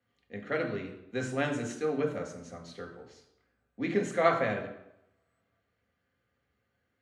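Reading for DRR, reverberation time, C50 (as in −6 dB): 2.0 dB, 0.85 s, 9.0 dB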